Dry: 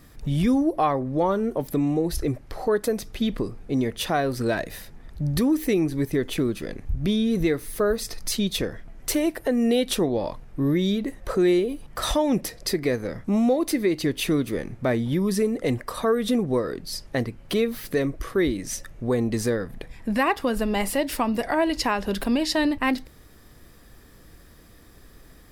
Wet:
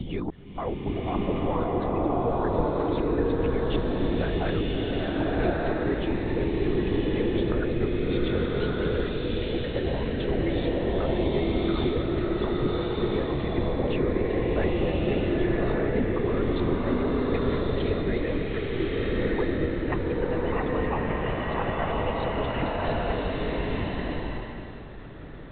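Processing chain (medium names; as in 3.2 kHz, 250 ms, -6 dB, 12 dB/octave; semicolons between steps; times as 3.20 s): slices played last to first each 289 ms, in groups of 2; Bessel high-pass 170 Hz; harmonic-percussive split harmonic -16 dB; reverse; compression 6:1, threshold -40 dBFS, peak gain reduction 18.5 dB; reverse; tilt EQ -2.5 dB/octave; LPC vocoder at 8 kHz whisper; swelling reverb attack 1250 ms, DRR -6 dB; trim +8.5 dB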